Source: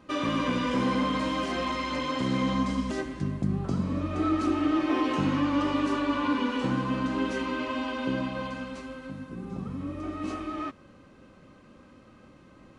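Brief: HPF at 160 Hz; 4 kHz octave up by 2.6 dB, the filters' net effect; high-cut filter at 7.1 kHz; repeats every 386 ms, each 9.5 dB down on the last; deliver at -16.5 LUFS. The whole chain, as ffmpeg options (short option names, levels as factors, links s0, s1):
-af "highpass=160,lowpass=7100,equalizer=f=4000:t=o:g=4,aecho=1:1:386|772|1158|1544:0.335|0.111|0.0365|0.012,volume=3.98"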